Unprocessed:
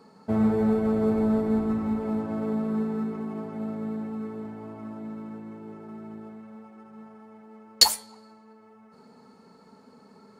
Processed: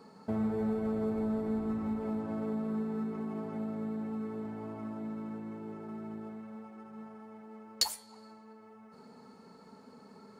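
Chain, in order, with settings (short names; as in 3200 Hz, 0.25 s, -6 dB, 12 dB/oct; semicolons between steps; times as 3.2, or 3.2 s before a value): compressor 2:1, threshold -35 dBFS, peak gain reduction 13.5 dB; gain -1 dB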